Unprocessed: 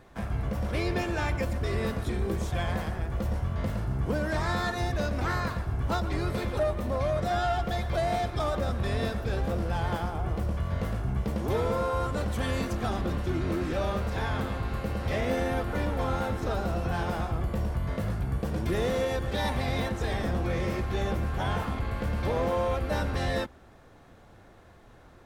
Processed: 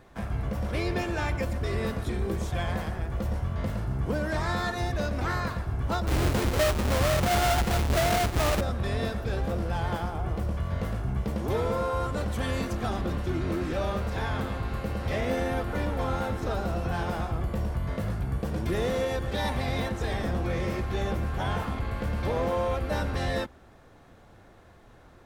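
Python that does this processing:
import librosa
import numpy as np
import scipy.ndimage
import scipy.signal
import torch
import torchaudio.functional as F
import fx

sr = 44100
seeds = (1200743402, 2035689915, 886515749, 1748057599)

y = fx.halfwave_hold(x, sr, at=(6.07, 8.61))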